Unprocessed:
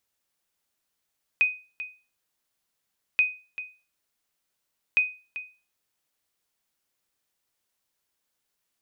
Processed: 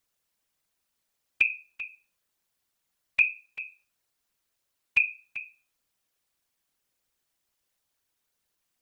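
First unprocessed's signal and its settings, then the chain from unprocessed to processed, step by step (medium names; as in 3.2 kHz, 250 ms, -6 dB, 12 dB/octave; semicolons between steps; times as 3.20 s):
sonar ping 2.5 kHz, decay 0.33 s, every 1.78 s, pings 3, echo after 0.39 s, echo -14 dB -13.5 dBFS
whisper effect; bass shelf 76 Hz +6.5 dB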